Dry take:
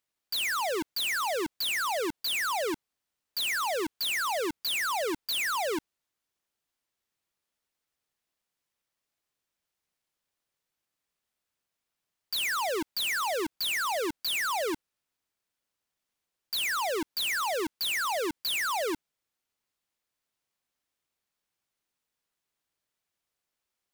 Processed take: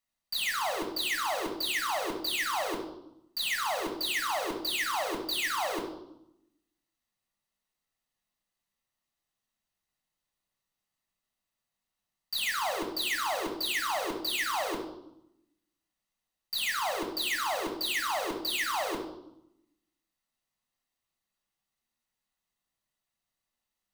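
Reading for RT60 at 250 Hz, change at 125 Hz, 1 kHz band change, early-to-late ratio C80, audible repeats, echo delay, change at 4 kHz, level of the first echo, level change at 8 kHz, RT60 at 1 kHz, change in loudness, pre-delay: 1.2 s, +1.5 dB, -0.5 dB, 9.5 dB, none, none, -1.0 dB, none, -2.0 dB, 0.80 s, -1.5 dB, 3 ms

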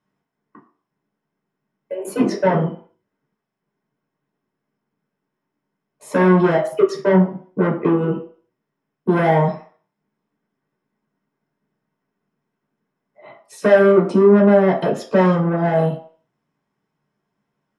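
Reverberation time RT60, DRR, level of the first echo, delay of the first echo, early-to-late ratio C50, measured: 0.50 s, -3.0 dB, none, none, 10.5 dB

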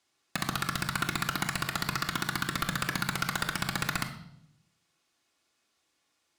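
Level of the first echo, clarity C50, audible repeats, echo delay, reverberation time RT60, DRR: none, 9.5 dB, none, none, 0.75 s, 2.0 dB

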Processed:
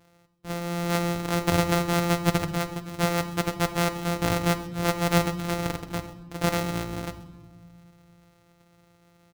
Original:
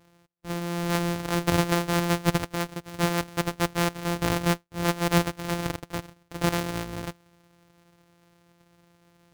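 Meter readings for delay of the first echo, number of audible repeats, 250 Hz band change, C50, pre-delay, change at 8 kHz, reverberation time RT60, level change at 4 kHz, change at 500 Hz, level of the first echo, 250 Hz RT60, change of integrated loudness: 0.132 s, 1, +0.5 dB, 12.0 dB, 10 ms, +0.5 dB, 1.2 s, 0.0 dB, +1.5 dB, -18.5 dB, 2.3 s, +0.5 dB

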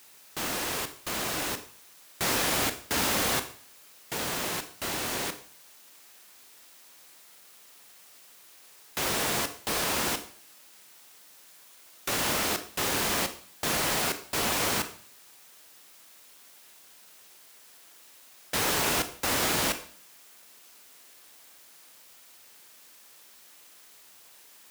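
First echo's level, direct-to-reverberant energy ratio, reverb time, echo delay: none, 9.0 dB, 0.50 s, none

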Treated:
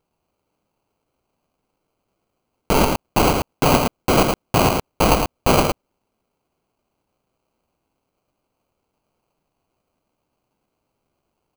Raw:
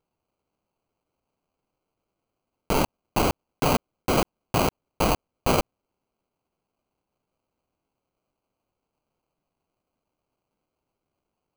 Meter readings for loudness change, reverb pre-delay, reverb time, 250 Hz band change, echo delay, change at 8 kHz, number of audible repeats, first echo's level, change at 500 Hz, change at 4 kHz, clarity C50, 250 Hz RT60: +7.0 dB, none, none, +7.5 dB, 0.11 s, +7.5 dB, 1, -4.5 dB, +7.0 dB, +7.5 dB, none, none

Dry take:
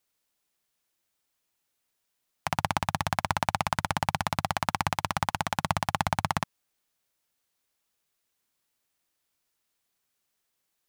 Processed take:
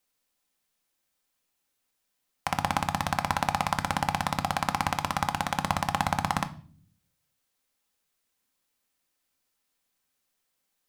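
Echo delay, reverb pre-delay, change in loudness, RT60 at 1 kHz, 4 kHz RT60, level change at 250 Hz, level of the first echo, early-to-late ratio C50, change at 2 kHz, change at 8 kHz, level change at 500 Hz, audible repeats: none, 4 ms, +1.0 dB, 0.40 s, 0.40 s, +2.0 dB, none, 17.0 dB, +0.5 dB, +0.5 dB, 0.0 dB, none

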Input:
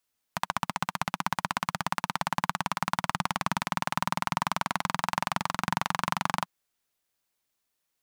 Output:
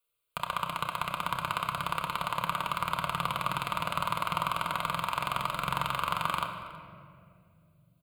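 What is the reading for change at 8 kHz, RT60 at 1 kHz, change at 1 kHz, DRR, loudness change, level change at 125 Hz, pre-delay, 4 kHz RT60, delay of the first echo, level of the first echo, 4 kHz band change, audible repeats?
-6.5 dB, 1.9 s, -1.0 dB, 1.5 dB, -1.0 dB, -2.0 dB, 4 ms, 1.3 s, 0.323 s, -20.5 dB, 0.0 dB, 1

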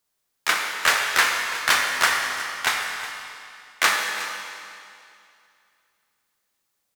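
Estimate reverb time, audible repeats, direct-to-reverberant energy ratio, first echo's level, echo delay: 2.5 s, 1, 0.5 dB, -15.0 dB, 0.363 s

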